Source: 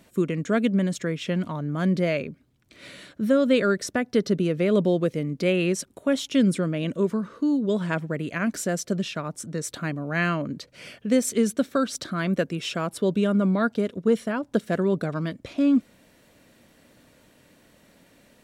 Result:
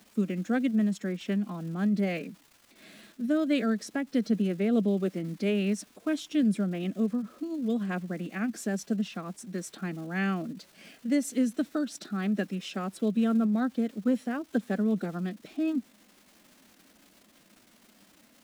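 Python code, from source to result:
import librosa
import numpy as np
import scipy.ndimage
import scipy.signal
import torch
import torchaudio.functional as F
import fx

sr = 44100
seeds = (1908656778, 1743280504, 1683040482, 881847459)

y = fx.low_shelf_res(x, sr, hz=120.0, db=-13.5, q=3.0)
y = fx.dmg_crackle(y, sr, seeds[0], per_s=450.0, level_db=-36.0)
y = fx.pitch_keep_formants(y, sr, semitones=2.0)
y = y * librosa.db_to_amplitude(-8.5)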